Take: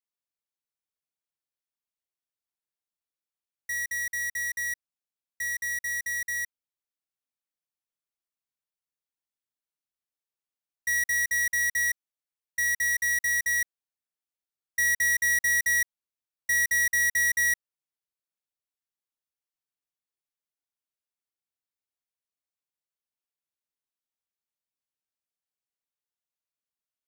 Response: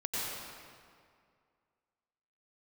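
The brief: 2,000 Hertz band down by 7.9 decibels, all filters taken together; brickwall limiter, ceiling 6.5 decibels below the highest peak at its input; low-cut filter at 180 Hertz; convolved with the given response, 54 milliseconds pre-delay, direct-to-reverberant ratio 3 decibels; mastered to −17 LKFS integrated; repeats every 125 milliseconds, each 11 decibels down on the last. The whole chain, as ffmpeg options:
-filter_complex "[0:a]highpass=180,equalizer=frequency=2000:width_type=o:gain=-8,alimiter=level_in=5dB:limit=-24dB:level=0:latency=1,volume=-5dB,aecho=1:1:125|250|375:0.282|0.0789|0.0221,asplit=2[link_01][link_02];[1:a]atrim=start_sample=2205,adelay=54[link_03];[link_02][link_03]afir=irnorm=-1:irlink=0,volume=-8.5dB[link_04];[link_01][link_04]amix=inputs=2:normalize=0,volume=15.5dB"

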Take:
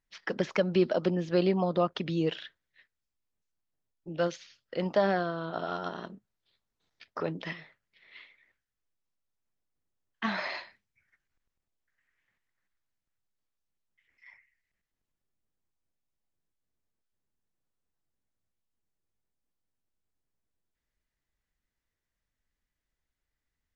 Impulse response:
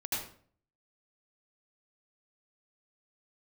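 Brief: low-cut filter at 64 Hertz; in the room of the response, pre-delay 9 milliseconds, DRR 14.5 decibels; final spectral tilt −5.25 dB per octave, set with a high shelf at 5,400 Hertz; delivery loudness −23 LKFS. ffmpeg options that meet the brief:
-filter_complex "[0:a]highpass=64,highshelf=frequency=5400:gain=-6.5,asplit=2[link_01][link_02];[1:a]atrim=start_sample=2205,adelay=9[link_03];[link_02][link_03]afir=irnorm=-1:irlink=0,volume=-19dB[link_04];[link_01][link_04]amix=inputs=2:normalize=0,volume=8dB"

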